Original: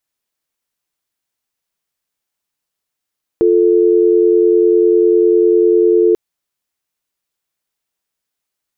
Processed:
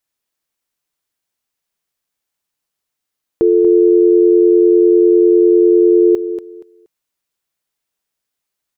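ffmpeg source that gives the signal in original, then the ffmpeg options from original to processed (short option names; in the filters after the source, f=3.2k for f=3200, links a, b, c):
-f lavfi -i "aevalsrc='0.299*(sin(2*PI*350*t)+sin(2*PI*440*t))':d=2.74:s=44100"
-af "aecho=1:1:237|474|711:0.282|0.062|0.0136"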